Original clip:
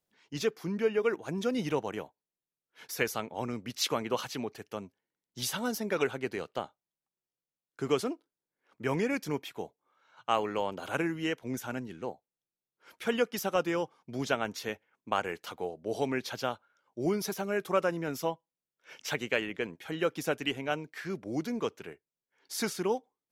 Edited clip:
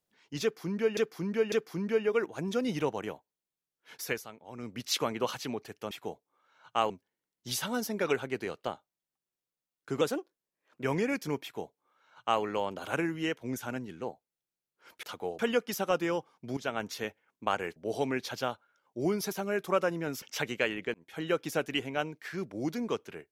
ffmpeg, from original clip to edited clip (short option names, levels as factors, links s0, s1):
-filter_complex "[0:a]asplit=15[s0][s1][s2][s3][s4][s5][s6][s7][s8][s9][s10][s11][s12][s13][s14];[s0]atrim=end=0.972[s15];[s1]atrim=start=0.418:end=0.972[s16];[s2]atrim=start=0.418:end=3.16,asetpts=PTS-STARTPTS,afade=t=out:st=2.502:d=0.24:silence=0.251189[s17];[s3]atrim=start=3.16:end=3.42,asetpts=PTS-STARTPTS,volume=0.251[s18];[s4]atrim=start=3.42:end=4.812,asetpts=PTS-STARTPTS,afade=t=in:d=0.24:silence=0.251189[s19];[s5]atrim=start=9.438:end=10.432[s20];[s6]atrim=start=4.808:end=7.924[s21];[s7]atrim=start=7.92:end=8.85,asetpts=PTS-STARTPTS,asetrate=49392,aresample=44100[s22];[s8]atrim=start=8.846:end=13.042[s23];[s9]atrim=start=15.408:end=15.772[s24];[s10]atrim=start=13.038:end=14.22,asetpts=PTS-STARTPTS,afade=t=out:st=1.178:d=0.004:c=hsin:silence=0.211349[s25];[s11]atrim=start=14.22:end=15.412,asetpts=PTS-STARTPTS,afade=t=in:d=0.34:c=qsin:silence=0.211349[s26];[s12]atrim=start=15.768:end=18.232[s27];[s13]atrim=start=18.938:end=19.66,asetpts=PTS-STARTPTS,afade=t=out:st=0.718:d=0.004:c=hsin[s28];[s14]atrim=start=19.66,asetpts=PTS-STARTPTS,afade=t=in:d=0.26[s29];[s15][s16]acrossfade=d=0.004:c1=hsin:c2=hsin[s30];[s17][s18][s19]concat=n=3:v=0:a=1[s31];[s30][s31]acrossfade=d=0.004:c1=hsin:c2=hsin[s32];[s32][s20]acrossfade=d=0.004:c1=hsin:c2=hsin[s33];[s33][s21]acrossfade=d=0.004:c1=hsin:c2=hsin[s34];[s34][s22]acrossfade=d=0.004:c1=hsin:c2=hsin[s35];[s35][s23]acrossfade=d=0.004:c1=hsin:c2=hsin[s36];[s36][s24]acrossfade=d=0.004:c1=hsin:c2=hsin[s37];[s25][s26]concat=n=2:v=0:a=1[s38];[s37][s38]acrossfade=d=0.004:c1=hsin:c2=hsin[s39];[s39][s27]acrossfade=d=0.004:c1=hsin:c2=hsin[s40];[s28][s29]concat=n=2:v=0:a=1[s41];[s40][s41]acrossfade=d=0.004:c1=hsin:c2=hsin"